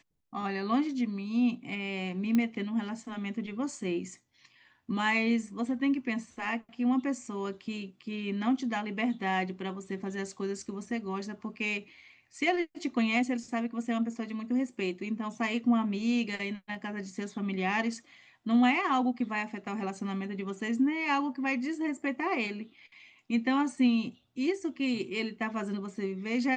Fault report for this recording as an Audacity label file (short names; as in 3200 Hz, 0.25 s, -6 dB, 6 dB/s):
2.350000	2.350000	pop -16 dBFS